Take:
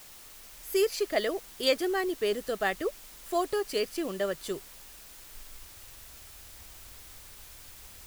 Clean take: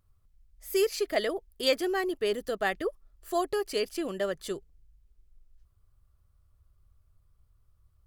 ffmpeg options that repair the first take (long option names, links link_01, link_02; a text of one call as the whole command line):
ffmpeg -i in.wav -af "afwtdn=0.0032,asetnsamples=nb_out_samples=441:pad=0,asendcmd='5.34 volume volume -8dB',volume=0dB" out.wav